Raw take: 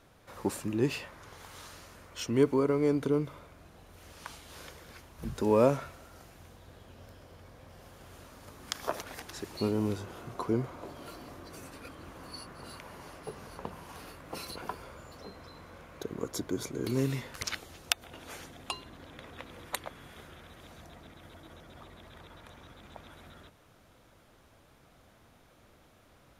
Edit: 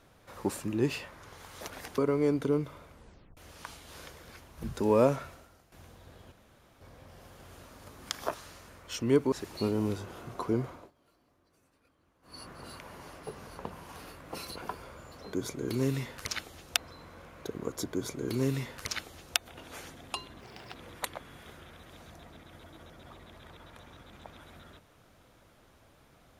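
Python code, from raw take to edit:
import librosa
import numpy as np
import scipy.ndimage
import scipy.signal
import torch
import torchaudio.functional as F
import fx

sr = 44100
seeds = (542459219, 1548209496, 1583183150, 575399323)

y = fx.edit(x, sr, fx.swap(start_s=1.61, length_s=0.98, other_s=8.95, other_length_s=0.37),
    fx.tape_stop(start_s=3.52, length_s=0.46),
    fx.fade_out_to(start_s=5.94, length_s=0.39, curve='qua', floor_db=-12.0),
    fx.room_tone_fill(start_s=6.93, length_s=0.49),
    fx.fade_down_up(start_s=10.69, length_s=1.75, db=-23.0, fade_s=0.22),
    fx.duplicate(start_s=16.49, length_s=1.44, to_s=15.33),
    fx.speed_span(start_s=18.97, length_s=0.48, speed=1.43), tone=tone)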